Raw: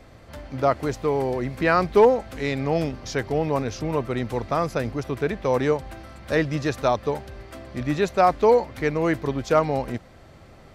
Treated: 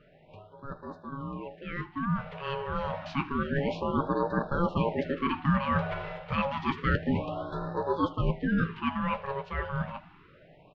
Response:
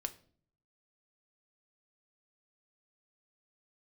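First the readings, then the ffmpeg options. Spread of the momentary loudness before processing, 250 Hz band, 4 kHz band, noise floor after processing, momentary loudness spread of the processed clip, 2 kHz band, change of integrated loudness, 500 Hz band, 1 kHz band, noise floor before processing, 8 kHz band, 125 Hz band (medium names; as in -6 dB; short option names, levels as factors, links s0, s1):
13 LU, -4.0 dB, -5.5 dB, -57 dBFS, 11 LU, -5.0 dB, -7.5 dB, -12.5 dB, -6.5 dB, -48 dBFS, under -25 dB, -3.5 dB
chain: -filter_complex "[0:a]aeval=exprs='val(0)*sin(2*PI*690*n/s)':c=same,lowpass=f=3300:w=0.5412,lowpass=f=3300:w=1.3066,areverse,acompressor=threshold=0.0282:ratio=6,areverse,flanger=delay=6.3:depth=7.9:regen=-48:speed=0.47:shape=triangular,equalizer=f=160:t=o:w=0.33:g=9,equalizer=f=800:t=o:w=0.33:g=-8,equalizer=f=1250:t=o:w=0.33:g=-3,asplit=2[s0][s1];[s1]aecho=0:1:78|156|234:0.106|0.0477|0.0214[s2];[s0][s2]amix=inputs=2:normalize=0,dynaudnorm=f=750:g=7:m=5.31,afftfilt=real='re*(1-between(b*sr/1024,260*pow(2600/260,0.5+0.5*sin(2*PI*0.29*pts/sr))/1.41,260*pow(2600/260,0.5+0.5*sin(2*PI*0.29*pts/sr))*1.41))':imag='im*(1-between(b*sr/1024,260*pow(2600/260,0.5+0.5*sin(2*PI*0.29*pts/sr))/1.41,260*pow(2600/260,0.5+0.5*sin(2*PI*0.29*pts/sr))*1.41))':win_size=1024:overlap=0.75,volume=0.841"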